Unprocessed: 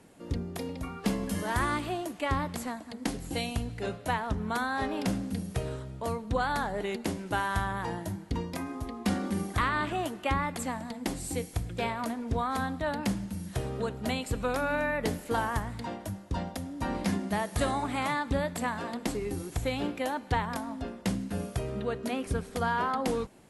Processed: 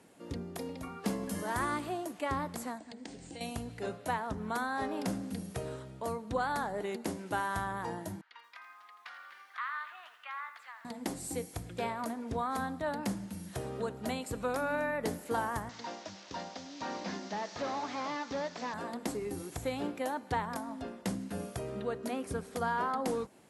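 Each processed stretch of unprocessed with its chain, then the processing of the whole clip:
2.78–3.41 s: Chebyshev low-pass 9.2 kHz, order 10 + compression 5:1, threshold -38 dBFS + peaking EQ 1.2 kHz -7.5 dB 0.56 oct
8.21–10.85 s: Chebyshev high-pass 1.3 kHz, order 3 + distance through air 310 m + bit-crushed delay 83 ms, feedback 35%, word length 10-bit, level -10.5 dB
15.69–18.74 s: one-bit delta coder 32 kbps, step -45.5 dBFS + high-pass 410 Hz 6 dB/octave + treble shelf 3 kHz +11.5 dB
whole clip: high-pass 200 Hz 6 dB/octave; dynamic bell 2.9 kHz, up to -6 dB, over -50 dBFS, Q 1; trim -2 dB

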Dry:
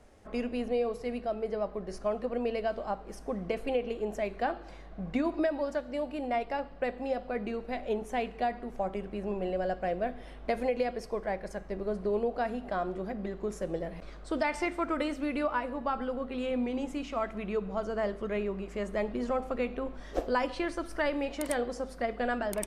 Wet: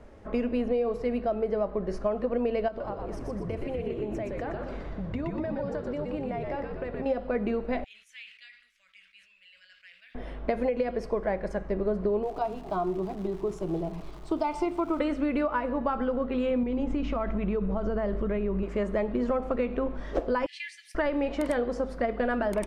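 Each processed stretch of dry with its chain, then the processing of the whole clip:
2.68–7.06 s: compression 4:1, threshold -40 dBFS + frequency-shifting echo 121 ms, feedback 49%, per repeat -92 Hz, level -3.5 dB
7.84–10.15 s: inverse Chebyshev high-pass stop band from 910 Hz, stop band 50 dB + flange 1.2 Hz, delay 2.4 ms, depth 9.2 ms, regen -56% + decay stretcher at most 84 dB/s
12.22–14.99 s: static phaser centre 350 Hz, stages 8 + crackle 470 per s -44 dBFS
16.63–18.63 s: low-pass 6.3 kHz + bass shelf 160 Hz +10.5 dB + compression, threshold -31 dBFS
20.46–20.95 s: steep high-pass 1.8 kHz 96 dB/octave + treble shelf 8.6 kHz +6 dB
whole clip: low-pass 1.6 kHz 6 dB/octave; band-stop 750 Hz, Q 12; compression, threshold -32 dBFS; trim +8.5 dB

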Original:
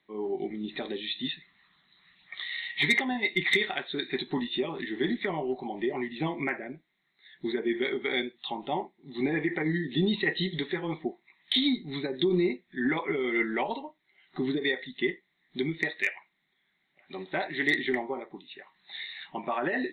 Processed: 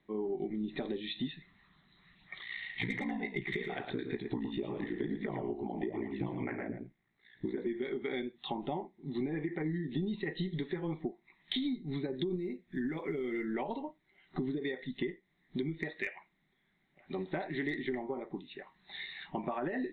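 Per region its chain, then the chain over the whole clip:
2.38–7.67 s: peaking EQ 3.9 kHz -6 dB 0.29 oct + ring modulator 29 Hz + delay 112 ms -7.5 dB
12.36–13.55 s: block-companded coder 7-bit + dynamic bell 920 Hz, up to -6 dB, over -50 dBFS, Q 2 + compression 1.5:1, threshold -35 dBFS
whole clip: tilt EQ -3 dB/octave; compression 6:1, threshold -33 dBFS

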